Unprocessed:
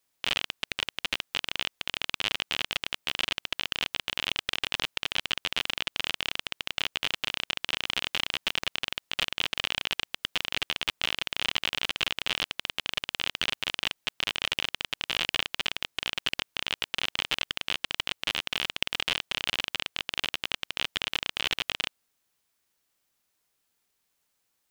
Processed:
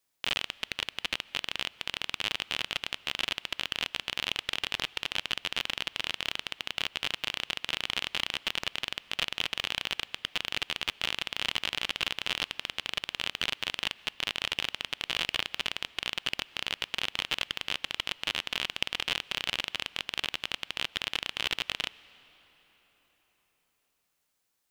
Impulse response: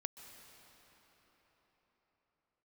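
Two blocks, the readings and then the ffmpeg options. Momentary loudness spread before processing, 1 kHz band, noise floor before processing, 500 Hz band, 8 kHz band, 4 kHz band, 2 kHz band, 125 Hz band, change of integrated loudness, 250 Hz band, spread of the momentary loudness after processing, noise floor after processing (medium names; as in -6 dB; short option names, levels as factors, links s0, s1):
3 LU, -2.0 dB, -77 dBFS, -2.0 dB, -2.0 dB, -2.0 dB, -2.0 dB, -2.0 dB, -2.0 dB, -2.0 dB, 3 LU, -77 dBFS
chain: -filter_complex "[0:a]asplit=2[s0][s1];[1:a]atrim=start_sample=2205[s2];[s1][s2]afir=irnorm=-1:irlink=0,volume=0.376[s3];[s0][s3]amix=inputs=2:normalize=0,volume=0.631"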